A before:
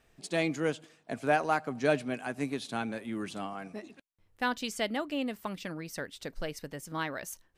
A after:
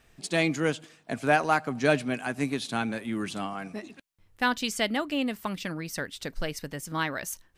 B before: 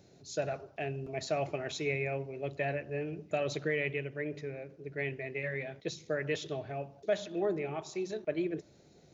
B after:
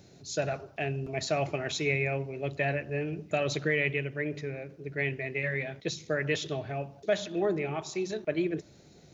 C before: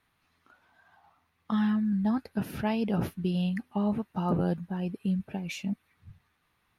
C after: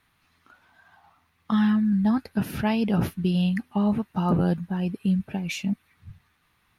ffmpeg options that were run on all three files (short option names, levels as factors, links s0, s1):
-af "equalizer=f=520:t=o:w=1.7:g=-4,volume=2.11"